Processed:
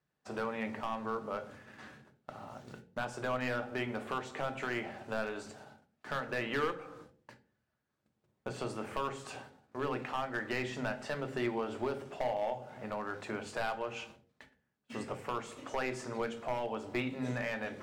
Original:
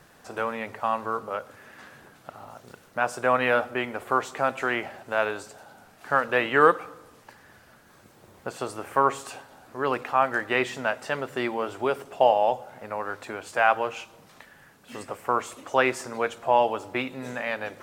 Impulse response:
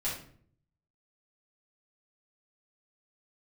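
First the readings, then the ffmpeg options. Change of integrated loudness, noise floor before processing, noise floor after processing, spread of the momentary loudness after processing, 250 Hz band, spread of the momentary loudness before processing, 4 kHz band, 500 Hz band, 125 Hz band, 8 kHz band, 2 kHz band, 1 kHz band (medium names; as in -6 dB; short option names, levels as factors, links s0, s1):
-11.5 dB, -55 dBFS, -82 dBFS, 14 LU, -5.0 dB, 17 LU, -8.0 dB, -11.0 dB, -2.0 dB, -9.5 dB, -11.5 dB, -14.0 dB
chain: -filter_complex "[0:a]agate=range=0.0447:threshold=0.00398:ratio=16:detection=peak,highpass=63,equalizer=f=13000:t=o:w=0.82:g=-14.5,acompressor=threshold=0.0316:ratio=2.5,volume=15,asoftclip=hard,volume=0.0668,asplit=2[s0][s1];[s1]asuperstop=centerf=1100:order=12:qfactor=2.4[s2];[1:a]atrim=start_sample=2205,asetrate=70560,aresample=44100,lowshelf=f=280:g=8.5[s3];[s2][s3]afir=irnorm=-1:irlink=0,volume=0.501[s4];[s0][s4]amix=inputs=2:normalize=0,volume=0.596"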